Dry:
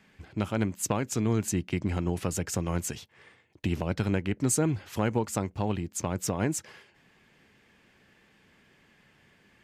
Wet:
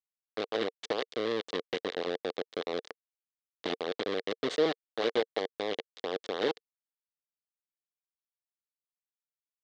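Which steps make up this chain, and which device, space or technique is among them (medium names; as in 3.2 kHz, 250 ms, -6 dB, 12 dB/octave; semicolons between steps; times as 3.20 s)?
hand-held game console (bit crusher 4-bit; cabinet simulation 460–4000 Hz, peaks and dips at 460 Hz +8 dB, 650 Hz -3 dB, 930 Hz -9 dB, 1.4 kHz -7 dB, 2.5 kHz -9 dB, 3.7 kHz +4 dB)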